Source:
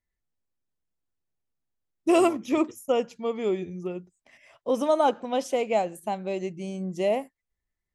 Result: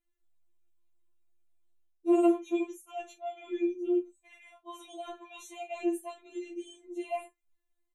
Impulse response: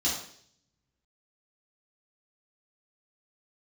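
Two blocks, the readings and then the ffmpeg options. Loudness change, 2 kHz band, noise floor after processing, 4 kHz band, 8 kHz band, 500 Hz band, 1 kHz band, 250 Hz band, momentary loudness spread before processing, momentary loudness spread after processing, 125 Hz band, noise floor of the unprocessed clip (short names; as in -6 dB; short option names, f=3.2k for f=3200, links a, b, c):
-5.5 dB, -10.0 dB, -79 dBFS, -11.0 dB, -9.5 dB, -8.5 dB, -11.0 dB, -2.5 dB, 12 LU, 20 LU, under -35 dB, under -85 dBFS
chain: -af "equalizer=f=400:t=o:w=0.33:g=7,equalizer=f=1.6k:t=o:w=0.33:g=-5,equalizer=f=2.5k:t=o:w=0.33:g=5,areverse,acompressor=threshold=-31dB:ratio=6,areverse,asuperstop=centerf=5000:order=8:qfactor=3,aecho=1:1:23|45:0.398|0.141,afftfilt=real='re*4*eq(mod(b,16),0)':imag='im*4*eq(mod(b,16),0)':win_size=2048:overlap=0.75,volume=2dB"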